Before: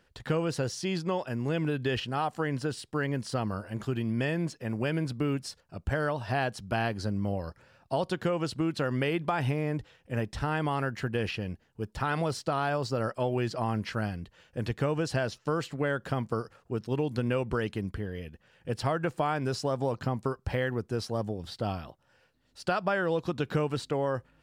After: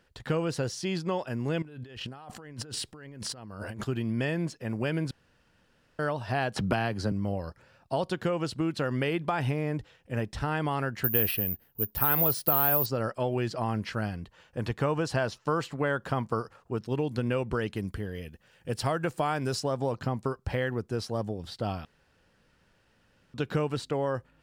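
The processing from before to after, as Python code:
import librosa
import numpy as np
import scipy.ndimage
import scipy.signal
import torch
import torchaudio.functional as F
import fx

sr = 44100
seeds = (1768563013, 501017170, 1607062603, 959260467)

y = fx.over_compress(x, sr, threshold_db=-42.0, ratio=-1.0, at=(1.62, 3.84))
y = fx.band_squash(y, sr, depth_pct=100, at=(6.56, 7.12))
y = fx.resample_bad(y, sr, factor=3, down='filtered', up='zero_stuff', at=(11.04, 12.86))
y = fx.peak_eq(y, sr, hz=1000.0, db=5.5, octaves=0.87, at=(14.13, 16.79))
y = fx.high_shelf(y, sr, hz=6100.0, db=9.5, at=(17.76, 19.6))
y = fx.edit(y, sr, fx.room_tone_fill(start_s=5.11, length_s=0.88),
    fx.room_tone_fill(start_s=21.85, length_s=1.49), tone=tone)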